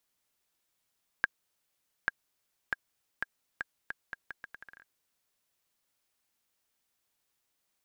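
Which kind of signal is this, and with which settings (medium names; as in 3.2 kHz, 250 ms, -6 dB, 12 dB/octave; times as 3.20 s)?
bouncing ball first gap 0.84 s, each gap 0.77, 1.62 kHz, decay 24 ms -11.5 dBFS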